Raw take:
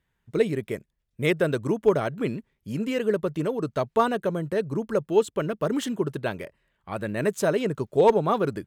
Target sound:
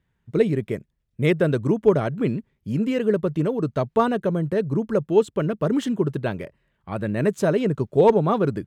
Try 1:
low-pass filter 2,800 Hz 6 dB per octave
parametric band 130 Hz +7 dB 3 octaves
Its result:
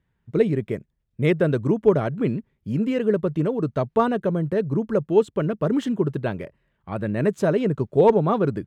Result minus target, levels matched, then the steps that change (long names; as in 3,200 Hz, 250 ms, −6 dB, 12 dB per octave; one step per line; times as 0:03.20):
8,000 Hz band −4.5 dB
change: low-pass filter 5,900 Hz 6 dB per octave